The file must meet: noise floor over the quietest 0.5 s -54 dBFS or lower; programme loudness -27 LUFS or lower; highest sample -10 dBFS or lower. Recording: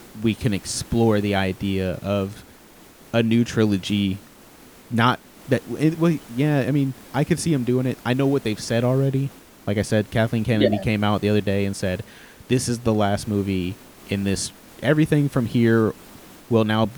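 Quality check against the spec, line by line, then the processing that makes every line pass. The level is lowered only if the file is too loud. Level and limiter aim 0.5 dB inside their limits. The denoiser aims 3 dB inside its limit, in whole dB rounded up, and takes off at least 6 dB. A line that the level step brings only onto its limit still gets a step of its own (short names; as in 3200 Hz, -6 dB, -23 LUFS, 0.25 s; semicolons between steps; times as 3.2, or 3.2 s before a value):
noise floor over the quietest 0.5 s -48 dBFS: fail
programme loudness -22.0 LUFS: fail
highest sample -4.5 dBFS: fail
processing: denoiser 6 dB, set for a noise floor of -48 dBFS; gain -5.5 dB; limiter -10.5 dBFS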